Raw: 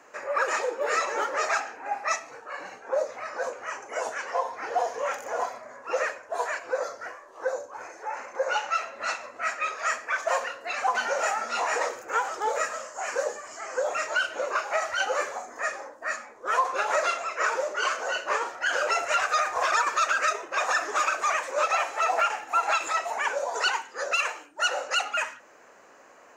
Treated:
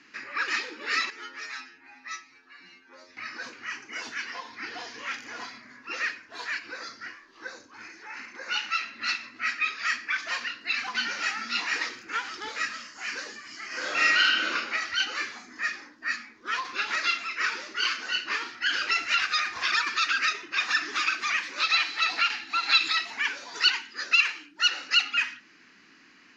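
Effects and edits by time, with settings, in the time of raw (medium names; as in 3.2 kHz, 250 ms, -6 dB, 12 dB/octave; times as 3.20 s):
1.10–3.17 s: inharmonic resonator 86 Hz, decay 0.36 s, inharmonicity 0.002
13.67–14.51 s: reverb throw, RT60 1.1 s, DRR -7 dB
21.60–23.05 s: peaking EQ 4.1 kHz +10 dB 0.4 oct
whole clip: FFT filter 100 Hz 0 dB, 190 Hz +7 dB, 310 Hz +4 dB, 560 Hz -24 dB, 2 kHz +4 dB, 4.8 kHz +10 dB, 8.2 kHz -18 dB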